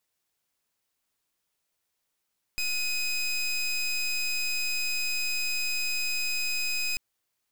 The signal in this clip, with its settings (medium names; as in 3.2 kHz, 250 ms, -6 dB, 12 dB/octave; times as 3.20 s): pulse 2.51 kHz, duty 22% -28.5 dBFS 4.39 s